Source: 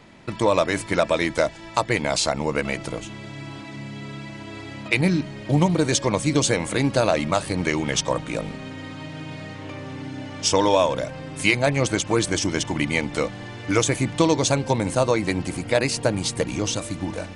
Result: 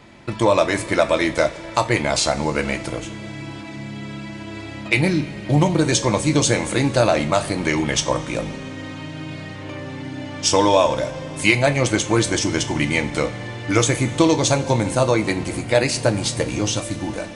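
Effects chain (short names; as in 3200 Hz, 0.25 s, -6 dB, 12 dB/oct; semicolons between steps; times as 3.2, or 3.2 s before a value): two-slope reverb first 0.27 s, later 2.8 s, from -18 dB, DRR 6 dB; gain +2 dB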